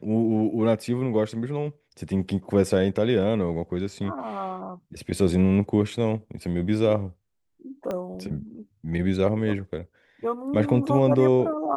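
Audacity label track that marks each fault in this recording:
7.910000	7.910000	pop -18 dBFS

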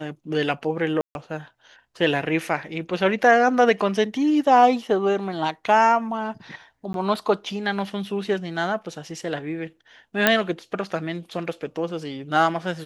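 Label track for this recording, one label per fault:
1.010000	1.150000	dropout 141 ms
6.930000	6.940000	dropout 12 ms
10.270000	10.270000	pop -1 dBFS

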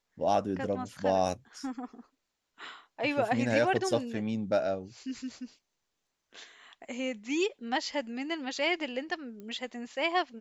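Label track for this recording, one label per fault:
9.400000	9.400000	pop -33 dBFS

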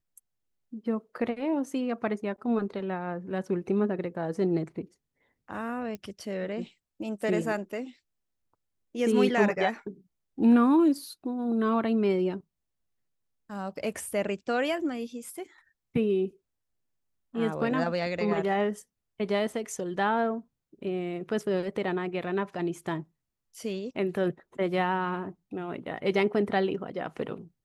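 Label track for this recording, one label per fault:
5.950000	5.950000	pop -24 dBFS

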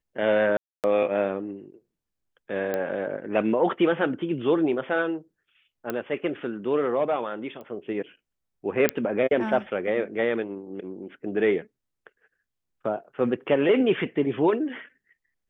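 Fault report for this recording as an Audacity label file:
0.570000	0.840000	dropout 268 ms
2.740000	2.740000	pop -15 dBFS
5.900000	5.900000	pop -15 dBFS
7.610000	7.610000	pop -30 dBFS
8.890000	8.890000	pop -6 dBFS

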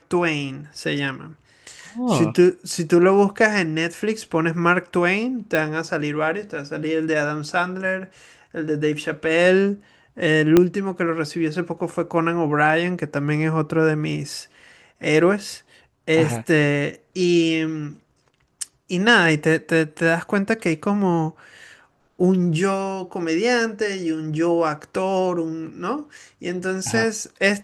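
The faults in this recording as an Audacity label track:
5.550000	5.550000	pop -8 dBFS
10.570000	10.570000	pop -2 dBFS

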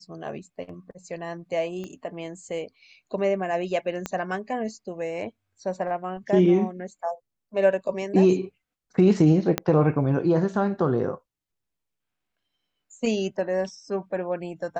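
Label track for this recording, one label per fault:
1.840000	1.840000	pop -24 dBFS
4.060000	4.060000	pop -14 dBFS
9.580000	9.580000	pop -8 dBFS

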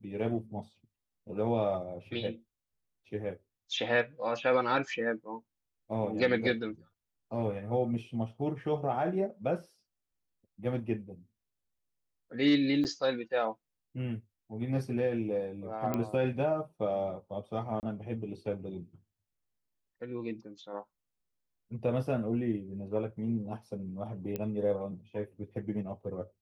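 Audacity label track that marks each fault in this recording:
12.840000	12.850000	dropout 8.7 ms
15.940000	15.940000	pop -18 dBFS
17.800000	17.830000	dropout 29 ms
24.360000	24.360000	pop -21 dBFS

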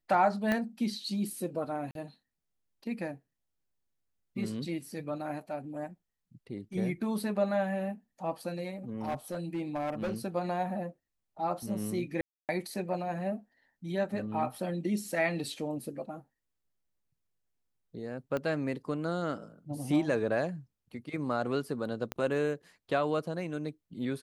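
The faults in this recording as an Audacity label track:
0.520000	0.520000	pop -16 dBFS
1.910000	1.950000	dropout 42 ms
9.000000	10.140000	clipped -29 dBFS
12.210000	12.490000	dropout 278 ms
18.370000	18.370000	pop -21 dBFS
22.120000	22.120000	pop -19 dBFS

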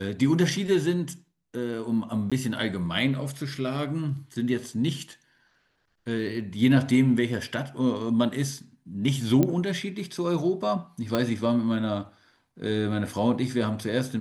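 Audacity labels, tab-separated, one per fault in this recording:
2.300000	2.320000	dropout 16 ms
9.430000	9.430000	pop -11 dBFS
11.150000	11.150000	pop -11 dBFS

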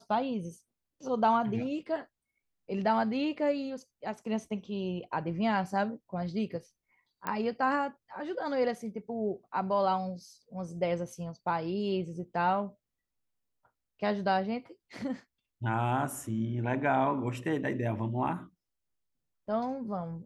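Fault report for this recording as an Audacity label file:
7.270000	7.270000	pop -19 dBFS

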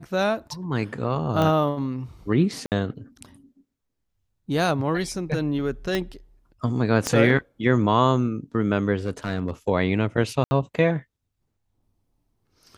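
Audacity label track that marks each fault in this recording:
1.420000	1.420000	pop -12 dBFS
2.660000	2.720000	dropout 58 ms
5.950000	5.950000	pop -11 dBFS
7.070000	7.070000	pop -9 dBFS
9.060000	9.510000	clipped -19 dBFS
10.440000	10.510000	dropout 70 ms

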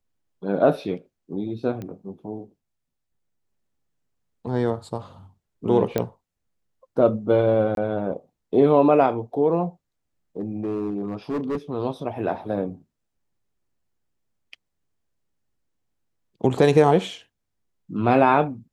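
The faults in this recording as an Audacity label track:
1.820000	1.820000	pop -22 dBFS
5.980000	5.980000	pop -10 dBFS
7.750000	7.770000	dropout 22 ms
10.390000	11.570000	clipped -22 dBFS

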